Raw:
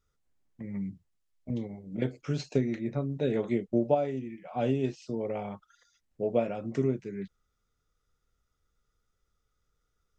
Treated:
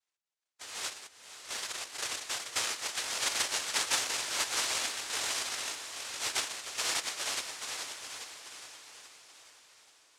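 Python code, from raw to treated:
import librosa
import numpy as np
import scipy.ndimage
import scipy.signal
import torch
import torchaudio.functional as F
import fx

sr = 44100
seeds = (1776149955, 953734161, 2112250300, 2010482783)

y = fx.reverse_delay_fb(x, sr, ms=417, feedback_pct=56, wet_db=-2.0)
y = fx.noise_vocoder(y, sr, seeds[0], bands=1)
y = fx.peak_eq(y, sr, hz=170.0, db=-15.0, octaves=1.6)
y = fx.echo_diffused(y, sr, ms=535, feedback_pct=52, wet_db=-10.5)
y = y * 10.0 ** (-6.5 / 20.0)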